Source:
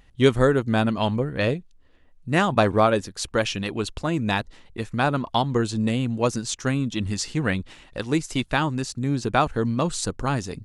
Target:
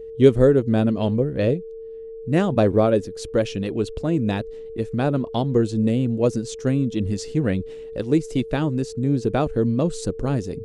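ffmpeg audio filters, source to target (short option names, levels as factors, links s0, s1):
-af "aeval=exprs='val(0)+0.0126*sin(2*PI*450*n/s)':c=same,lowshelf=f=690:t=q:w=1.5:g=9,volume=0.473"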